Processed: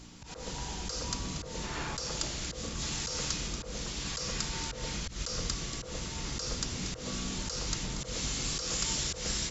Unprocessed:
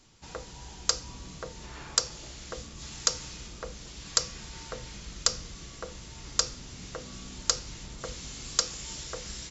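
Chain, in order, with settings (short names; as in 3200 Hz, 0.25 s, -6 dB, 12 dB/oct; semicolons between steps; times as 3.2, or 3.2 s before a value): hum 60 Hz, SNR 20 dB; echo with dull and thin repeats by turns 0.117 s, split 960 Hz, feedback 55%, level -14 dB; auto swell 0.135 s; notches 60/120 Hz; gain +7.5 dB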